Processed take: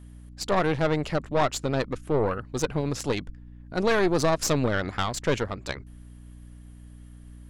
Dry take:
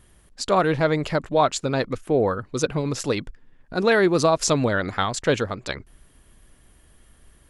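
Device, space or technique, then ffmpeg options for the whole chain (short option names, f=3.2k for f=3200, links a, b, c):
valve amplifier with mains hum: -af "aeval=exprs='(tanh(6.31*val(0)+0.7)-tanh(0.7))/6.31':c=same,aeval=exprs='val(0)+0.00631*(sin(2*PI*60*n/s)+sin(2*PI*2*60*n/s)/2+sin(2*PI*3*60*n/s)/3+sin(2*PI*4*60*n/s)/4+sin(2*PI*5*60*n/s)/5)':c=same"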